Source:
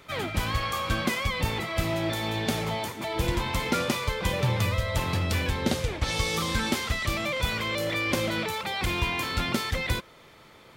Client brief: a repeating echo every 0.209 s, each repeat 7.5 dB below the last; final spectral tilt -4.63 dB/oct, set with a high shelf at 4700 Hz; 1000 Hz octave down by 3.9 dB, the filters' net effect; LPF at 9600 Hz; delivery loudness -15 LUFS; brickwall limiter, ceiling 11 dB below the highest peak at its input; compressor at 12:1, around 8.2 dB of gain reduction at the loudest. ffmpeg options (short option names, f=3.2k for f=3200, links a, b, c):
-af "lowpass=9.6k,equalizer=f=1k:t=o:g=-4.5,highshelf=f=4.7k:g=-4,acompressor=threshold=-30dB:ratio=12,alimiter=level_in=5.5dB:limit=-24dB:level=0:latency=1,volume=-5.5dB,aecho=1:1:209|418|627|836|1045:0.422|0.177|0.0744|0.0312|0.0131,volume=22dB"